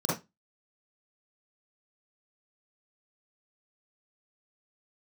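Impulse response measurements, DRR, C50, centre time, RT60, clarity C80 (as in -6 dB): -7.5 dB, 2.0 dB, 47 ms, no single decay rate, 12.5 dB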